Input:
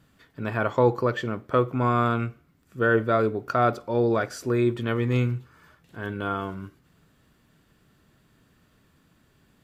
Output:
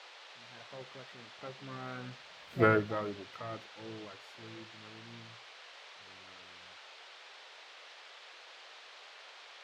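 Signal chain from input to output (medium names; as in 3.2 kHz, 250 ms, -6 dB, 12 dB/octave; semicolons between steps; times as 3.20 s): coarse spectral quantiser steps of 15 dB; Doppler pass-by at 2.59 s, 24 m/s, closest 1.5 m; level rider gain up to 7 dB; band noise 450–4100 Hz -48 dBFS; harmony voices +7 st -11 dB; trim -5.5 dB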